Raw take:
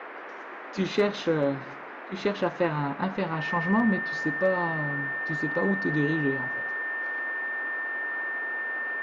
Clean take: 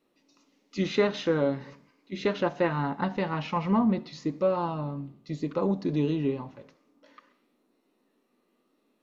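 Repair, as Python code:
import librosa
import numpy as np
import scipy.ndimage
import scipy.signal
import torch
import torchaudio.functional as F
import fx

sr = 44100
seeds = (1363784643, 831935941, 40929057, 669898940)

y = fx.fix_declip(x, sr, threshold_db=-14.5)
y = fx.notch(y, sr, hz=1800.0, q=30.0)
y = fx.noise_reduce(y, sr, print_start_s=0.02, print_end_s=0.52, reduce_db=30.0)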